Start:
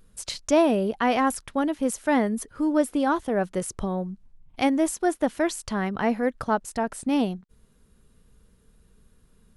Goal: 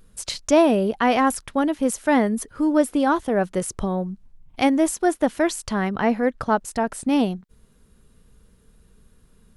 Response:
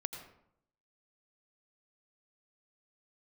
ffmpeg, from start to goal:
-filter_complex "[0:a]asettb=1/sr,asplit=3[s0][s1][s2];[s0]atrim=end=5.974[s3];[s1]atrim=start=5.97:end=6.5,asetpts=PTS-STARTPTS,afade=t=in:d=0.004:c=qsin,afade=t=out:st=0.526:d=0.004:c=qsin,highshelf=f=10000:g=-9.5[s4];[s2]atrim=start=6.496[s5];[s3][s4]acrossfade=d=0.004:c1=hsin:c2=qsin[s6];[s6][s5]acrossfade=d=0.004:c1=qsin:c2=hsin,volume=1.5"

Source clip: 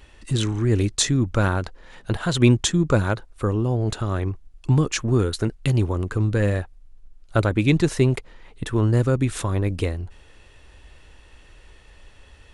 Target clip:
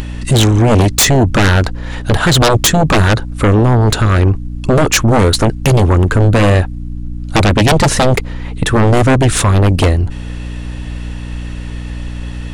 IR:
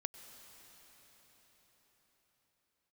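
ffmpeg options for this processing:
-af "aeval=exprs='val(0)+0.01*(sin(2*PI*60*n/s)+sin(2*PI*2*60*n/s)/2+sin(2*PI*3*60*n/s)/3+sin(2*PI*4*60*n/s)/4+sin(2*PI*5*60*n/s)/5)':c=same,aeval=exprs='0.631*sin(PI/2*5.62*val(0)/0.631)':c=same,acompressor=mode=upward:threshold=0.112:ratio=2.5,volume=0.841"

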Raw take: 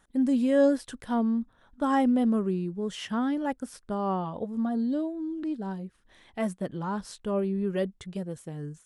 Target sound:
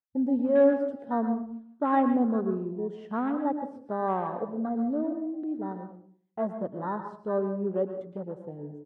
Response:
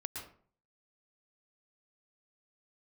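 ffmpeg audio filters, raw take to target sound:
-filter_complex "[0:a]bandpass=f=710:t=q:w=0.57:csg=0,asplit=2[s0][s1];[s1]adelay=400,highpass=300,lowpass=3400,asoftclip=type=hard:threshold=0.0631,volume=0.0891[s2];[s0][s2]amix=inputs=2:normalize=0,agate=range=0.0891:threshold=0.00251:ratio=16:detection=peak,afwtdn=0.00891,asplit=2[s3][s4];[1:a]atrim=start_sample=2205,highshelf=f=9800:g=-7.5[s5];[s4][s5]afir=irnorm=-1:irlink=0,volume=1.33[s6];[s3][s6]amix=inputs=2:normalize=0,volume=0.668"

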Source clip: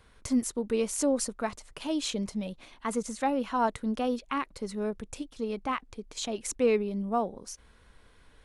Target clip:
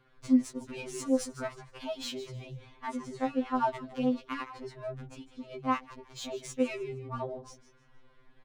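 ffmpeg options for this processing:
-filter_complex "[0:a]adynamicsmooth=sensitivity=5.5:basefreq=3400,asplit=4[s0][s1][s2][s3];[s1]adelay=155,afreqshift=-76,volume=0.188[s4];[s2]adelay=310,afreqshift=-152,volume=0.0603[s5];[s3]adelay=465,afreqshift=-228,volume=0.0193[s6];[s0][s4][s5][s6]amix=inputs=4:normalize=0,afftfilt=real='re*2.45*eq(mod(b,6),0)':imag='im*2.45*eq(mod(b,6),0)':win_size=2048:overlap=0.75"

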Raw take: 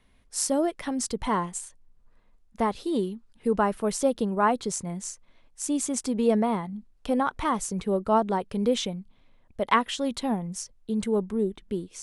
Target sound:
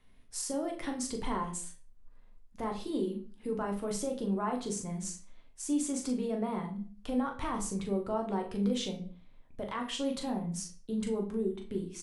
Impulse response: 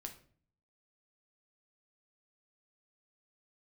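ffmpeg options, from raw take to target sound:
-filter_complex "[0:a]asplit=2[s0][s1];[s1]acompressor=threshold=0.0282:ratio=6,volume=1.12[s2];[s0][s2]amix=inputs=2:normalize=0,alimiter=limit=0.15:level=0:latency=1:release=20,asplit=2[s3][s4];[s4]adelay=40,volume=0.422[s5];[s3][s5]amix=inputs=2:normalize=0[s6];[1:a]atrim=start_sample=2205,afade=t=out:st=0.33:d=0.01,atrim=end_sample=14994[s7];[s6][s7]afir=irnorm=-1:irlink=0,volume=0.501"

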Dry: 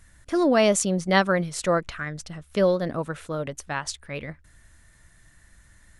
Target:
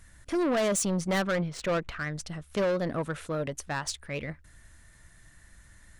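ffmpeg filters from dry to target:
-filter_complex "[0:a]asoftclip=type=tanh:threshold=0.0708,asettb=1/sr,asplit=3[s0][s1][s2];[s0]atrim=end=1.184[s3];[s1]atrim=start=1.18:end=2.06,asetpts=PTS-STARTPTS,afade=t=in:d=0.004:c=qsin,afade=t=out:st=0.876:d=0.004:c=qsin,adynamicsmooth=sensitivity=4:basefreq=2900[s4];[s2]atrim=start=2.056[s5];[s3][s4]acrossfade=d=0.004:c1=hsin:c2=qsin[s6];[s6][s5]acrossfade=d=0.004:c1=qsin:c2=hsin,aeval=exprs='0.0708*(cos(1*acos(clip(val(0)/0.0708,-1,1)))-cos(1*PI/2))+0.000708*(cos(8*acos(clip(val(0)/0.0708,-1,1)))-cos(8*PI/2))':c=same"

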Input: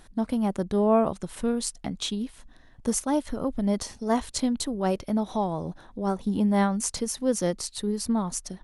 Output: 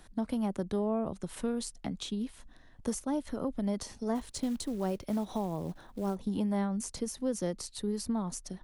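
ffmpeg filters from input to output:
-filter_complex "[0:a]acrossover=split=140|520[s0][s1][s2];[s0]acompressor=threshold=0.00794:ratio=4[s3];[s1]acompressor=threshold=0.0398:ratio=4[s4];[s2]acompressor=threshold=0.0158:ratio=4[s5];[s3][s4][s5]amix=inputs=3:normalize=0,asplit=3[s6][s7][s8];[s6]afade=t=out:st=4.14:d=0.02[s9];[s7]acrusher=bits=6:mode=log:mix=0:aa=0.000001,afade=t=in:st=4.14:d=0.02,afade=t=out:st=6.14:d=0.02[s10];[s8]afade=t=in:st=6.14:d=0.02[s11];[s9][s10][s11]amix=inputs=3:normalize=0,volume=0.708"

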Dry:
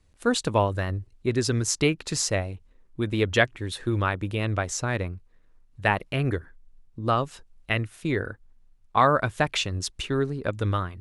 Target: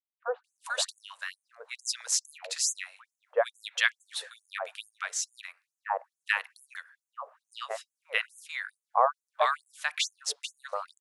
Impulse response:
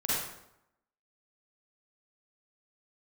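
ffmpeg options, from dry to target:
-filter_complex "[0:a]acrossover=split=1200[s0][s1];[s1]adelay=440[s2];[s0][s2]amix=inputs=2:normalize=0,asplit=2[s3][s4];[1:a]atrim=start_sample=2205,asetrate=66150,aresample=44100,lowpass=2200[s5];[s4][s5]afir=irnorm=-1:irlink=0,volume=0.0376[s6];[s3][s6]amix=inputs=2:normalize=0,afftfilt=real='re*gte(b*sr/1024,430*pow(6300/430,0.5+0.5*sin(2*PI*2.3*pts/sr)))':imag='im*gte(b*sr/1024,430*pow(6300/430,0.5+0.5*sin(2*PI*2.3*pts/sr)))':win_size=1024:overlap=0.75"

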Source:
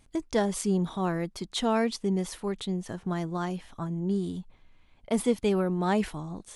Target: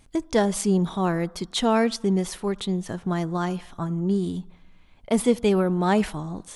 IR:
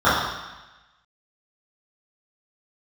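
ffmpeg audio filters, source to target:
-filter_complex "[0:a]asplit=2[s0][s1];[1:a]atrim=start_sample=2205,adelay=44[s2];[s1][s2]afir=irnorm=-1:irlink=0,volume=0.00398[s3];[s0][s3]amix=inputs=2:normalize=0,volume=1.78"

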